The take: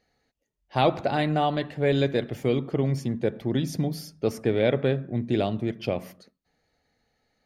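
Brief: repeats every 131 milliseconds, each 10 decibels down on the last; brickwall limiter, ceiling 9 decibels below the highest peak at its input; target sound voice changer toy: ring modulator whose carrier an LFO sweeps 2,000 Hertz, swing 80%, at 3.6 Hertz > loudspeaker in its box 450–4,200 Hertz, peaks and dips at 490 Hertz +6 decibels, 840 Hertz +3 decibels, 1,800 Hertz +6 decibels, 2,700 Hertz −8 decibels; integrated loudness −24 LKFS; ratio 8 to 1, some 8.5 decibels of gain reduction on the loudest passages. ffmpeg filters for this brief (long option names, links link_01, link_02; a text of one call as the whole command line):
ffmpeg -i in.wav -af "acompressor=threshold=-26dB:ratio=8,alimiter=limit=-23dB:level=0:latency=1,aecho=1:1:131|262|393|524:0.316|0.101|0.0324|0.0104,aeval=exprs='val(0)*sin(2*PI*2000*n/s+2000*0.8/3.6*sin(2*PI*3.6*n/s))':channel_layout=same,highpass=450,equalizer=frequency=490:width_type=q:width=4:gain=6,equalizer=frequency=840:width_type=q:width=4:gain=3,equalizer=frequency=1800:width_type=q:width=4:gain=6,equalizer=frequency=2700:width_type=q:width=4:gain=-8,lowpass=frequency=4200:width=0.5412,lowpass=frequency=4200:width=1.3066,volume=11.5dB" out.wav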